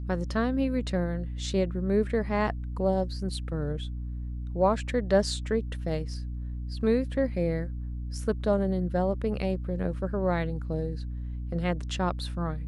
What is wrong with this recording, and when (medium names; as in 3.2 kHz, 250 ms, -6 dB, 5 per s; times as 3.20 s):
hum 60 Hz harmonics 5 -34 dBFS